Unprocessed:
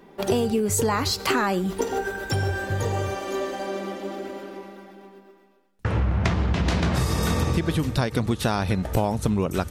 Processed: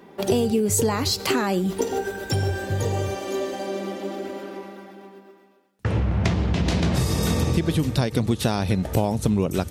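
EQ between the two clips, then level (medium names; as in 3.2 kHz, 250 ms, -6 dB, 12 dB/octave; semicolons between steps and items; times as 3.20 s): dynamic bell 1.3 kHz, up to -7 dB, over -40 dBFS, Q 0.93; high-pass 69 Hz; +2.5 dB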